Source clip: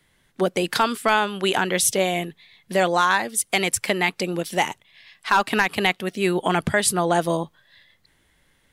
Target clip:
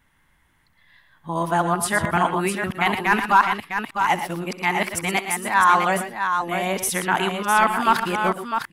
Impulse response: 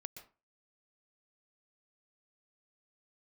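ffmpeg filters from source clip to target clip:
-af "areverse,equalizer=f=500:t=o:w=1:g=-9,equalizer=f=1k:t=o:w=1:g=7,equalizer=f=4k:t=o:w=1:g=-7,equalizer=f=8k:t=o:w=1:g=-5,aecho=1:1:65|112|125|655:0.133|0.266|0.224|0.473"

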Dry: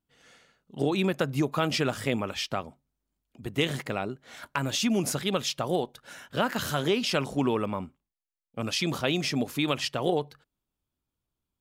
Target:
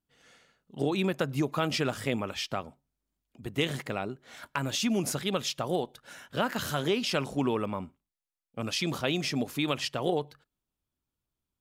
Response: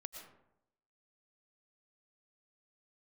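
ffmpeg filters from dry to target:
-filter_complex "[1:a]atrim=start_sample=2205,atrim=end_sample=3528,asetrate=30870,aresample=44100[a];[0:a][a]afir=irnorm=-1:irlink=0,volume=1.5dB"

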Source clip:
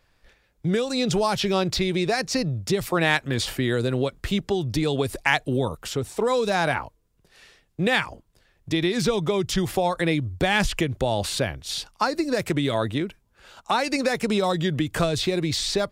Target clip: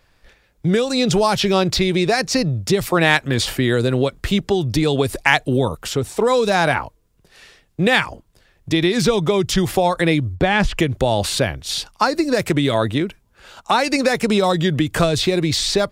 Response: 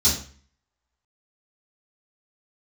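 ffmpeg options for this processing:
-filter_complex "[0:a]asettb=1/sr,asplit=3[a][b][c];[a]atrim=end=10.354[d];[b]atrim=start=10.35:end=10.79,asetpts=PTS-STARTPTS,afade=t=in:d=0.004:c=qsin,afade=t=out:st=0.436:d=0.004:c=qsin,aemphasis=mode=reproduction:type=75kf[e];[c]atrim=start=10.786[f];[d][e]acrossfade=d=0.004:c1=hsin:c2=qsin[g];[g][f]acrossfade=d=0.004:c1=qsin:c2=hsin,volume=6dB"

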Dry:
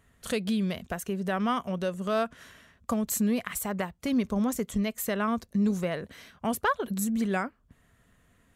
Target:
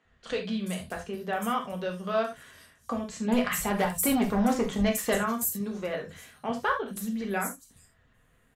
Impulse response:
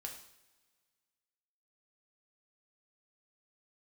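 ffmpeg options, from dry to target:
-filter_complex "[0:a]flanger=delay=3.9:depth=6.5:regen=-62:speed=0.58:shape=triangular,asettb=1/sr,asplit=3[a][b][c];[a]atrim=end=3.284[d];[b]atrim=start=3.28:end=5.18,asetpts=PTS-STARTPTS,afade=t=in:d=0.004:c=qsin,afade=t=out:st=1.896:d=0.004:c=qsin,aeval=exprs='0.119*(cos(1*acos(clip(val(0)/0.119,-1,1)))-cos(1*PI/2))+0.0422*(cos(5*acos(clip(val(0)/0.119,-1,1)))-cos(5*PI/2))':c=same[e];[c]atrim=start=5.176[f];[d][e]acrossfade=d=0.004:c1=hsin:c2=qsin[g];[g][f]acrossfade=d=0.004:c1=qsin:c2=hsin,acrossover=split=190|5900[h][i][j];[h]adelay=50[k];[j]adelay=430[l];[k][i][l]amix=inputs=3:normalize=0[m];[1:a]atrim=start_sample=2205,atrim=end_sample=3969[n];[m][n]afir=irnorm=-1:irlink=0,volume=7dB"

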